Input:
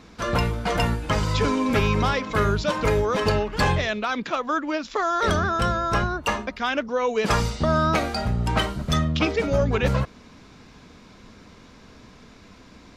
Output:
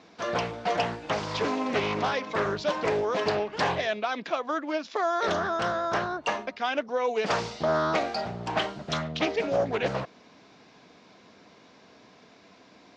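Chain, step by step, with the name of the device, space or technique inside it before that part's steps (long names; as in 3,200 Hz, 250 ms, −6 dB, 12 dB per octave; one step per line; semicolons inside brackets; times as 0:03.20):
full-range speaker at full volume (highs frequency-modulated by the lows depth 0.37 ms; loudspeaker in its box 210–6,500 Hz, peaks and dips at 230 Hz −4 dB, 690 Hz +6 dB, 1,300 Hz −3 dB)
level −4 dB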